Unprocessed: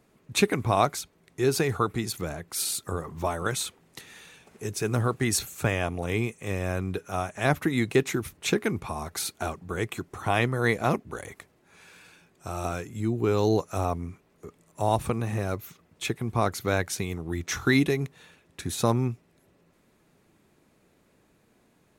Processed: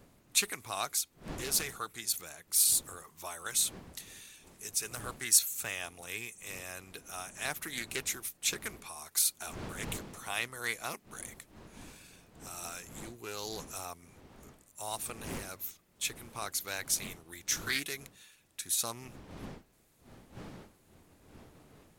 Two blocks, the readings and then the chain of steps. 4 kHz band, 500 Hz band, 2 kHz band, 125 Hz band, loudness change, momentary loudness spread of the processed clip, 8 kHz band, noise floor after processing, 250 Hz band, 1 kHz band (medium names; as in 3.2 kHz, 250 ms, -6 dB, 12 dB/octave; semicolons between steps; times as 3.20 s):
-1.0 dB, -18.0 dB, -7.0 dB, -20.5 dB, -5.5 dB, 19 LU, +3.5 dB, -67 dBFS, -19.0 dB, -13.0 dB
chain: wind noise 210 Hz -28 dBFS; pre-emphasis filter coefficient 0.97; loudspeaker Doppler distortion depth 0.42 ms; trim +4 dB